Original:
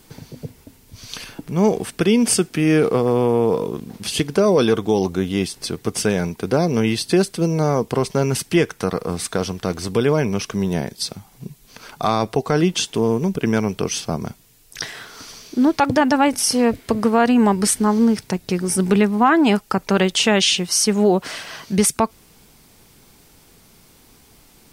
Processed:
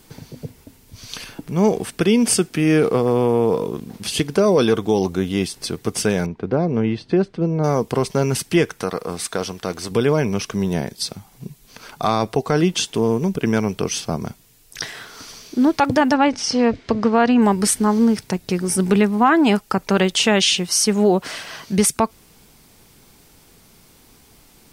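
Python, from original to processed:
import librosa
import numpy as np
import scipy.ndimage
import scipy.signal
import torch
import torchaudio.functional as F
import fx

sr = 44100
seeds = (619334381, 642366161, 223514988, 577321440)

y = fx.spacing_loss(x, sr, db_at_10k=35, at=(6.26, 7.64))
y = fx.low_shelf(y, sr, hz=220.0, db=-9.0, at=(8.83, 9.91))
y = fx.lowpass(y, sr, hz=5900.0, slope=24, at=(16.14, 17.42))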